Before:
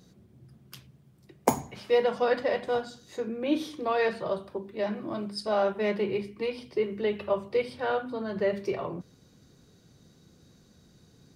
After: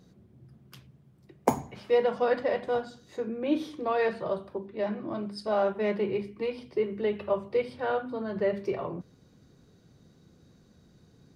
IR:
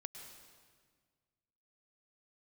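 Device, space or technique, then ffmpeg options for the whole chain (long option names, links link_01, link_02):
behind a face mask: -filter_complex "[0:a]asettb=1/sr,asplit=3[link_01][link_02][link_03];[link_01]atrim=end=4.664[link_04];[link_02]atrim=start=4.66:end=5.25,asetpts=PTS-STARTPTS,afade=type=in:duration=0.004:curve=qsin,afade=type=out:start_time=0.586:duration=0.004:curve=qsin,lowpass=6400[link_05];[link_03]atrim=start=5.246[link_06];[link_04][link_05]acrossfade=duration=0.004:curve1=hsin:curve2=qsin[link_07];[link_07][link_06]acrossfade=duration=0.004:curve1=qsin:curve2=hsin,highshelf=frequency=3000:gain=-8"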